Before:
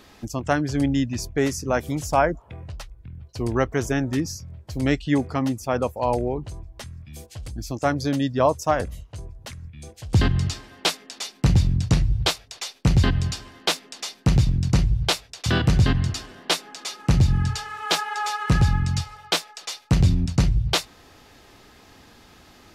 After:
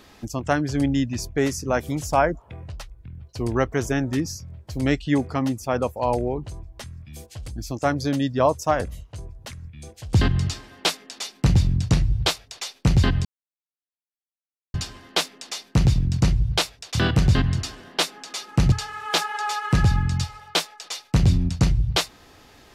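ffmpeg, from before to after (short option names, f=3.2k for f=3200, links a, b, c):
-filter_complex "[0:a]asplit=3[a][b][c];[a]atrim=end=13.25,asetpts=PTS-STARTPTS,afade=t=out:st=13.246:d=0.004:c=hsin,apad=pad_dur=1.49[d];[b]atrim=start=13.25:end=17.232,asetpts=PTS-STARTPTS,afade=t=in:d=0.004:c=hsin[e];[c]atrim=start=17.488[f];[d][e]concat=n=2:v=0:a=1[g];[g][f]acrossfade=d=0.004:c1=hsin:c2=hsin"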